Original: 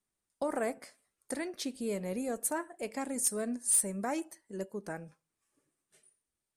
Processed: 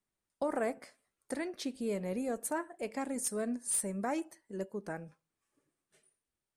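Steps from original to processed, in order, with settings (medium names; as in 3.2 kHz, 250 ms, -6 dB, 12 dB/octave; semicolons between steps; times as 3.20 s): treble shelf 5.2 kHz -7.5 dB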